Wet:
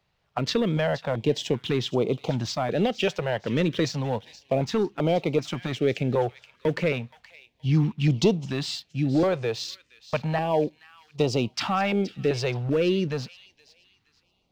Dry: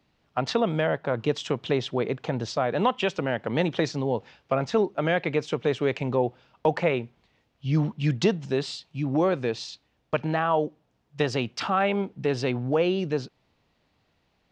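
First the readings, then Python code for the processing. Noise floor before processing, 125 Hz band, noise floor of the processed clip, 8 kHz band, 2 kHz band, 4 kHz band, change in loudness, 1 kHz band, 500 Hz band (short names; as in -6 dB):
-71 dBFS, +2.5 dB, -70 dBFS, +4.0 dB, -1.5 dB, +2.5 dB, +0.5 dB, -2.5 dB, 0.0 dB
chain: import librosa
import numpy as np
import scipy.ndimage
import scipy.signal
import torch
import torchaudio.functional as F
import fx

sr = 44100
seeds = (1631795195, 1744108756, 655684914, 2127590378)

y = fx.dynamic_eq(x, sr, hz=1400.0, q=1.6, threshold_db=-43.0, ratio=4.0, max_db=-5)
y = fx.leveller(y, sr, passes=1)
y = fx.echo_wet_highpass(y, sr, ms=473, feedback_pct=31, hz=2000.0, wet_db=-14.5)
y = fx.filter_held_notch(y, sr, hz=2.6, low_hz=270.0, high_hz=1700.0)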